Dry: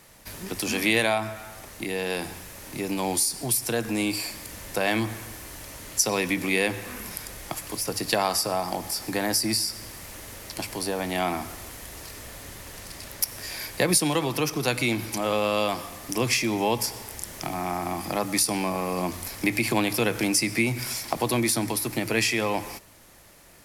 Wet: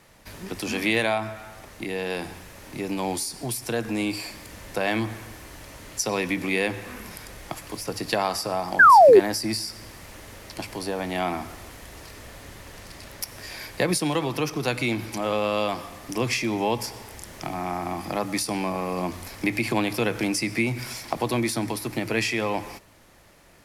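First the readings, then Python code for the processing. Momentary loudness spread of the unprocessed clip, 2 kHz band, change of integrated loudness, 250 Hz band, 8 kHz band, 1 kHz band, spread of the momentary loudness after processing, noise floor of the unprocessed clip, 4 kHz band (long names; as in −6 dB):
16 LU, +2.5 dB, +1.5 dB, 0.0 dB, −6.5 dB, +6.5 dB, 18 LU, −44 dBFS, −3.0 dB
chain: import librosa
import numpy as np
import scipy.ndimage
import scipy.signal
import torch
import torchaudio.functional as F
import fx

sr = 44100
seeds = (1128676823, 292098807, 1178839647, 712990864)

y = fx.high_shelf(x, sr, hz=6300.0, db=-10.0)
y = fx.spec_paint(y, sr, seeds[0], shape='fall', start_s=8.79, length_s=0.41, low_hz=350.0, high_hz=1700.0, level_db=-11.0)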